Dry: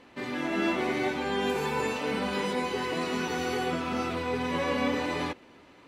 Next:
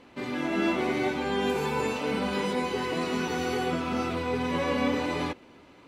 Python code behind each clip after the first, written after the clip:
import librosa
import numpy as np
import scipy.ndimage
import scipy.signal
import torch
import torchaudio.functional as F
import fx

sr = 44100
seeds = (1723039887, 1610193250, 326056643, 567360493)

y = fx.low_shelf(x, sr, hz=400.0, db=3.0)
y = fx.notch(y, sr, hz=1800.0, q=20.0)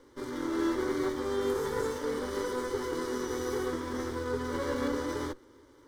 y = fx.lower_of_two(x, sr, delay_ms=0.34)
y = fx.fixed_phaser(y, sr, hz=700.0, stages=6)